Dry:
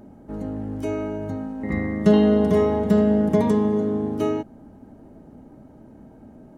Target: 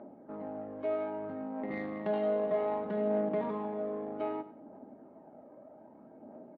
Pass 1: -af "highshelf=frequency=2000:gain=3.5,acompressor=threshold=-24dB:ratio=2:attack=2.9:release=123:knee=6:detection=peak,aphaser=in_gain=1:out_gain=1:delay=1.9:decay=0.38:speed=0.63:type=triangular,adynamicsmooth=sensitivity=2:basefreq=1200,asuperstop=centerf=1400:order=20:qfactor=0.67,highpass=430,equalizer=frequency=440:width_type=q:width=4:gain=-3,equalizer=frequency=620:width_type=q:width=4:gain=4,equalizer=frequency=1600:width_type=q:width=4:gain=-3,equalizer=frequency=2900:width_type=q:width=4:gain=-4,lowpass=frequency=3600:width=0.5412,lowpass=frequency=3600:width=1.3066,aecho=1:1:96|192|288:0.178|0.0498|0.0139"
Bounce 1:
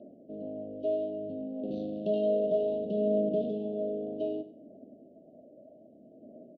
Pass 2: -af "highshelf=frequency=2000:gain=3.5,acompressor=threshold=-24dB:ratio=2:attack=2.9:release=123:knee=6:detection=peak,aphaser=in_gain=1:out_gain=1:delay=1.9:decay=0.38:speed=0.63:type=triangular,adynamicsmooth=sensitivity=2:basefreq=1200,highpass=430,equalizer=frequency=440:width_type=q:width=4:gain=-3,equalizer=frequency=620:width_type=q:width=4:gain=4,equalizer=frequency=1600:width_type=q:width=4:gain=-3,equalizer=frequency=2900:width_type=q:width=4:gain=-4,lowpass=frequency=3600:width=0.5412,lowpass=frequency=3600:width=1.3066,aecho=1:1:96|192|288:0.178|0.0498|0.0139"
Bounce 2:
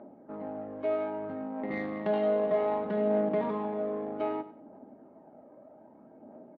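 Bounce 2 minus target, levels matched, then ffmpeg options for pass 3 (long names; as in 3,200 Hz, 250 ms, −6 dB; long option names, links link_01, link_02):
downward compressor: peak gain reduction −3 dB
-af "highshelf=frequency=2000:gain=3.5,acompressor=threshold=-30.5dB:ratio=2:attack=2.9:release=123:knee=6:detection=peak,aphaser=in_gain=1:out_gain=1:delay=1.9:decay=0.38:speed=0.63:type=triangular,adynamicsmooth=sensitivity=2:basefreq=1200,highpass=430,equalizer=frequency=440:width_type=q:width=4:gain=-3,equalizer=frequency=620:width_type=q:width=4:gain=4,equalizer=frequency=1600:width_type=q:width=4:gain=-3,equalizer=frequency=2900:width_type=q:width=4:gain=-4,lowpass=frequency=3600:width=0.5412,lowpass=frequency=3600:width=1.3066,aecho=1:1:96|192|288:0.178|0.0498|0.0139"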